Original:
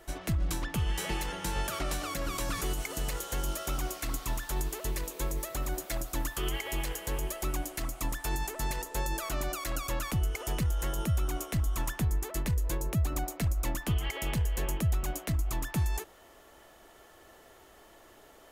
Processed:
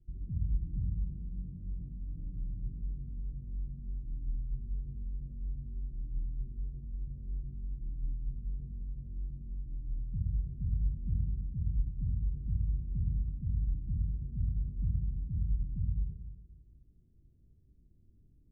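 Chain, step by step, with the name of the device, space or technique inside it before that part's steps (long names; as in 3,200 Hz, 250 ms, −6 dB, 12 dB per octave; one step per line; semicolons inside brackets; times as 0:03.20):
club heard from the street (brickwall limiter −29.5 dBFS, peak gain reduction 8.5 dB; low-pass filter 180 Hz 24 dB per octave; convolution reverb RT60 1.1 s, pre-delay 34 ms, DRR −0.5 dB)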